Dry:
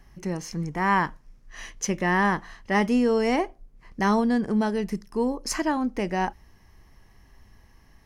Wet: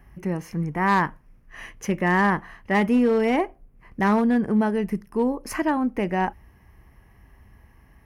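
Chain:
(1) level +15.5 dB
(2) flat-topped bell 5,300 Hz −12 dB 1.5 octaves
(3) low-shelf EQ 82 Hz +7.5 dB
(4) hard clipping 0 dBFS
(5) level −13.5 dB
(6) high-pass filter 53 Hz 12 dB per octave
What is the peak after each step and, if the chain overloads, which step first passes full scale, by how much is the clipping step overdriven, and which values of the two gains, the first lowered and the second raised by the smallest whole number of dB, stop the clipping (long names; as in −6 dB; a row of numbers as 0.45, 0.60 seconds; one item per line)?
+4.5, +4.0, +5.0, 0.0, −13.5, −11.5 dBFS
step 1, 5.0 dB
step 1 +10.5 dB, step 5 −8.5 dB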